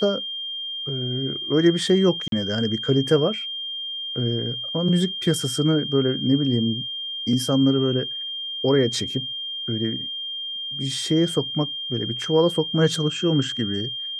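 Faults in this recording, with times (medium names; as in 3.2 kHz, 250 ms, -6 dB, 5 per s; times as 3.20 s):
whine 3.2 kHz -28 dBFS
2.28–2.32 s: dropout 42 ms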